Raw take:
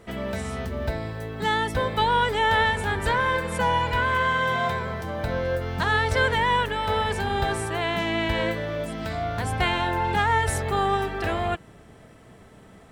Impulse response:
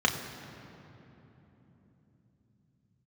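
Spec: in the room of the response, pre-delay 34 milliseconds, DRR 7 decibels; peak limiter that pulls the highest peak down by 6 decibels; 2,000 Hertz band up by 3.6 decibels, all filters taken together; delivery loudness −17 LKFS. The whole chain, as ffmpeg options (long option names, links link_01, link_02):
-filter_complex "[0:a]equalizer=frequency=2000:width_type=o:gain=4.5,alimiter=limit=-13dB:level=0:latency=1,asplit=2[link_01][link_02];[1:a]atrim=start_sample=2205,adelay=34[link_03];[link_02][link_03]afir=irnorm=-1:irlink=0,volume=-19.5dB[link_04];[link_01][link_04]amix=inputs=2:normalize=0,volume=6.5dB"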